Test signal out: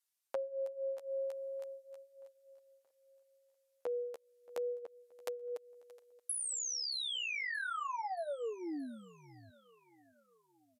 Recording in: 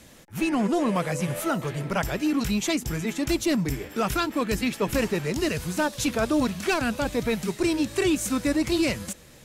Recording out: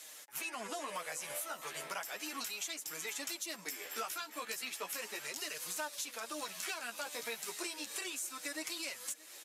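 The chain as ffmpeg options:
-af "highpass=760,highshelf=f=4.7k:g=10,acompressor=threshold=-34dB:ratio=20,flanger=delay=6.4:depth=7:regen=4:speed=0.35:shape=sinusoidal,aecho=1:1:626|1252|1878|2504:0.075|0.0405|0.0219|0.0118,aresample=32000,aresample=44100"

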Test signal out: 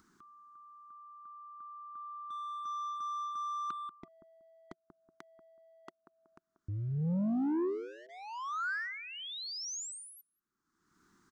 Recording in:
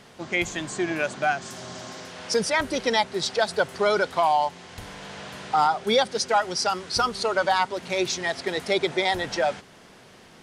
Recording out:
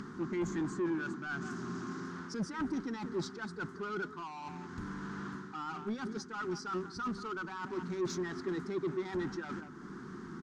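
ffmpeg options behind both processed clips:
-filter_complex "[0:a]highshelf=f=1.8k:t=q:w=3:g=-13,asplit=2[a][b];[b]adelay=187,lowpass=f=1.2k:p=1,volume=-16dB,asplit=2[c][d];[d]adelay=187,lowpass=f=1.2k:p=1,volume=0.18[e];[a][c][e]amix=inputs=3:normalize=0,areverse,acompressor=threshold=-26dB:ratio=12,areverse,bandreject=f=650:w=12,asplit=2[f][g];[g]volume=34.5dB,asoftclip=hard,volume=-34.5dB,volume=-5dB[h];[f][h]amix=inputs=2:normalize=0,acompressor=mode=upward:threshold=-33dB:ratio=2.5,firequalizer=gain_entry='entry(120,0);entry(170,9);entry(360,8);entry(550,-22);entry(960,-7);entry(1500,2);entry(6600,5);entry(11000,-11)':delay=0.05:min_phase=1,asoftclip=type=tanh:threshold=-21dB,volume=-7.5dB"

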